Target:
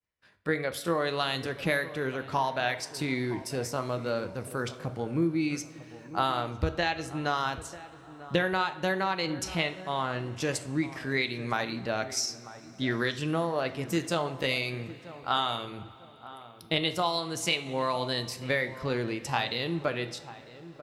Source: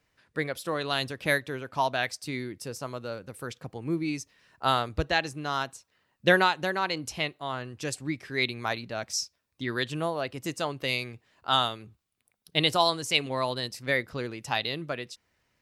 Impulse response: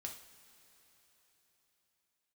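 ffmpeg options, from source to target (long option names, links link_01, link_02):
-filter_complex "[0:a]acompressor=threshold=-30dB:ratio=5,asplit=2[link_01][link_02];[link_02]adelay=707,lowpass=frequency=1300:poles=1,volume=-15dB,asplit=2[link_03][link_04];[link_04]adelay=707,lowpass=frequency=1300:poles=1,volume=0.33,asplit=2[link_05][link_06];[link_06]adelay=707,lowpass=frequency=1300:poles=1,volume=0.33[link_07];[link_01][link_03][link_05][link_07]amix=inputs=4:normalize=0,atempo=0.75,agate=range=-33dB:threshold=-59dB:ratio=3:detection=peak,asplit=2[link_08][link_09];[1:a]atrim=start_sample=2205,highshelf=frequency=4400:gain=-8.5[link_10];[link_09][link_10]afir=irnorm=-1:irlink=0,volume=4dB[link_11];[link_08][link_11]amix=inputs=2:normalize=0"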